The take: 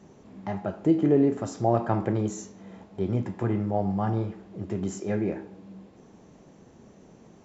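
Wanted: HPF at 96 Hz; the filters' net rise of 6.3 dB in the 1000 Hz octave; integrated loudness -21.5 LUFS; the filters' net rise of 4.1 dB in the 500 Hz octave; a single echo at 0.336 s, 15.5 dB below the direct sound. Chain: HPF 96 Hz; bell 500 Hz +3.5 dB; bell 1000 Hz +7.5 dB; echo 0.336 s -15.5 dB; gain +3.5 dB

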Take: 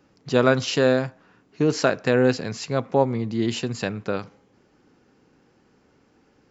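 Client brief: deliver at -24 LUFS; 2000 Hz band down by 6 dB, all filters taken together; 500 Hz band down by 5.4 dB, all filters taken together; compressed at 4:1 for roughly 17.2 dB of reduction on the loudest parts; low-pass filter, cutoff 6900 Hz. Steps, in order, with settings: LPF 6900 Hz; bell 500 Hz -6 dB; bell 2000 Hz -8.5 dB; compressor 4:1, threshold -38 dBFS; gain +16.5 dB

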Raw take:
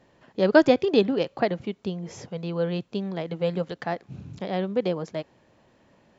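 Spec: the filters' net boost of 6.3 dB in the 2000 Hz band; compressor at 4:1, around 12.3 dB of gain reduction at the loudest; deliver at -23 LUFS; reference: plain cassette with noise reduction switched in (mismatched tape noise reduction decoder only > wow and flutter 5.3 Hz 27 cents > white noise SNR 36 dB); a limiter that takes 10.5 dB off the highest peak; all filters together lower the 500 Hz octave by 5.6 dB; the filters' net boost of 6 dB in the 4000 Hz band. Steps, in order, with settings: bell 500 Hz -7.5 dB; bell 2000 Hz +8.5 dB; bell 4000 Hz +4.5 dB; compressor 4:1, threshold -27 dBFS; limiter -24 dBFS; mismatched tape noise reduction decoder only; wow and flutter 5.3 Hz 27 cents; white noise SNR 36 dB; gain +13 dB

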